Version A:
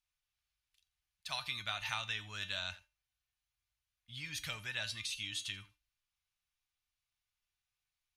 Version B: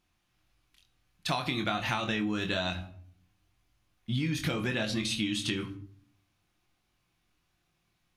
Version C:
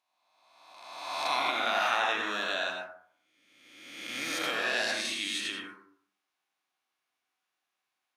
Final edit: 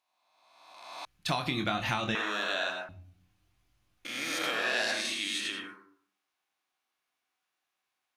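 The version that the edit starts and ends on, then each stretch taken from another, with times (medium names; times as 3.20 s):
C
1.05–2.15 s: from B
2.89–4.05 s: from B
not used: A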